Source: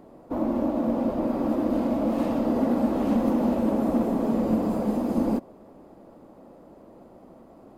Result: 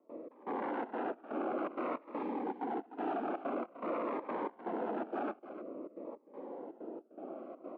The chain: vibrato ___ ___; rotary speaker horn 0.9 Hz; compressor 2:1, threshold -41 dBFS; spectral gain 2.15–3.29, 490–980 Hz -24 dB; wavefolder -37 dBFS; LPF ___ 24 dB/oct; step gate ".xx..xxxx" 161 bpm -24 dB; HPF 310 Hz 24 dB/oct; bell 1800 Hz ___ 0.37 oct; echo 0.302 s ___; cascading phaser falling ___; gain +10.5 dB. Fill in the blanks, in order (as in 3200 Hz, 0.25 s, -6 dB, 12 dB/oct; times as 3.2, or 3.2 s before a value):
0.6 Hz, 7.6 cents, 2300 Hz, -9 dB, -13 dB, 0.51 Hz